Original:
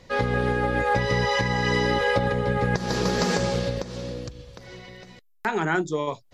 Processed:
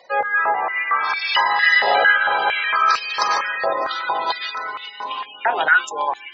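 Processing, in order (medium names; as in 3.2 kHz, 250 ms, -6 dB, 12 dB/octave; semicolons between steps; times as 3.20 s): spectral gate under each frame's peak -20 dB strong; treble shelf 2.8 kHz +11 dB; 0.54–1.35 s: ring modulator 340 Hz; ever faster or slower copies 249 ms, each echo -4 st, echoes 3; step-sequenced high-pass 4.4 Hz 690–2600 Hz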